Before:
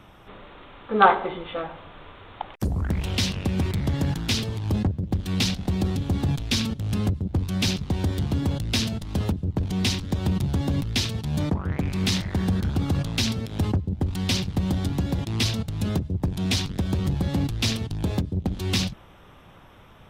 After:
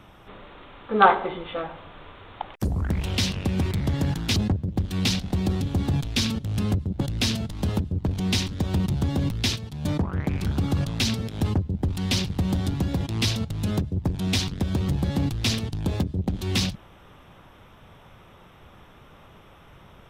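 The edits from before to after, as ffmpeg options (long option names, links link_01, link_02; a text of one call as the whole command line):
ffmpeg -i in.wav -filter_complex "[0:a]asplit=6[link_01][link_02][link_03][link_04][link_05][link_06];[link_01]atrim=end=4.362[link_07];[link_02]atrim=start=4.708:end=7.362[link_08];[link_03]atrim=start=8.528:end=11.082[link_09];[link_04]atrim=start=11.078:end=11.372,asetpts=PTS-STARTPTS,volume=-6.5dB[link_10];[link_05]atrim=start=11.368:end=11.962[link_11];[link_06]atrim=start=12.618[link_12];[link_07][link_08]acrossfade=duration=0.004:curve1=hsin:curve2=hsin[link_13];[link_13][link_09]acrossfade=duration=0.004:curve1=hsin:curve2=hsin[link_14];[link_14][link_10]acrossfade=duration=0.004:curve1=hsin:curve2=hsin[link_15];[link_15][link_11]acrossfade=duration=0.004:curve1=hsin:curve2=hsin[link_16];[link_16][link_12]acrossfade=duration=0.004:curve1=hsin:curve2=hsin" out.wav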